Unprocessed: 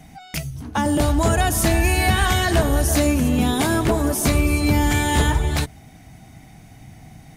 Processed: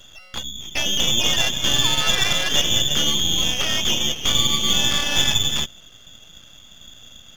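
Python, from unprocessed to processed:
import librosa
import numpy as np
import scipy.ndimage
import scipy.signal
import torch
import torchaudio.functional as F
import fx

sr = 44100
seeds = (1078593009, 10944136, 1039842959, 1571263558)

y = fx.freq_invert(x, sr, carrier_hz=3500)
y = np.maximum(y, 0.0)
y = F.gain(torch.from_numpy(y), 1.5).numpy()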